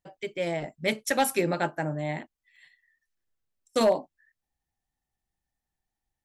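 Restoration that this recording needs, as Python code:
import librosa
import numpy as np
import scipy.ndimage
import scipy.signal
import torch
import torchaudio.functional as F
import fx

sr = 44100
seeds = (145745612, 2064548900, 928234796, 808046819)

y = fx.fix_declip(x, sr, threshold_db=-14.5)
y = fx.fix_interpolate(y, sr, at_s=(2.56,), length_ms=2.4)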